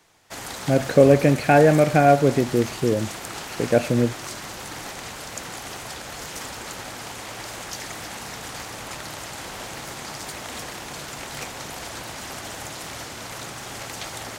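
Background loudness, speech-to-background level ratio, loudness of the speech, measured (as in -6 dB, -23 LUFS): -33.5 LUFS, 15.0 dB, -18.5 LUFS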